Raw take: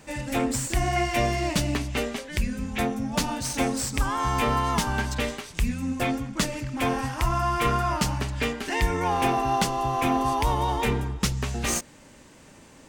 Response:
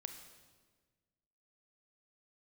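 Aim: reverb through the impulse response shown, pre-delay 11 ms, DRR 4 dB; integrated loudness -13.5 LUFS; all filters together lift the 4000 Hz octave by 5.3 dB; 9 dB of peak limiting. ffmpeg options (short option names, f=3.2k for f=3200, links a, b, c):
-filter_complex "[0:a]equalizer=f=4k:t=o:g=7,alimiter=limit=-17dB:level=0:latency=1,asplit=2[a][b];[1:a]atrim=start_sample=2205,adelay=11[c];[b][c]afir=irnorm=-1:irlink=0,volume=-0.5dB[d];[a][d]amix=inputs=2:normalize=0,volume=12.5dB"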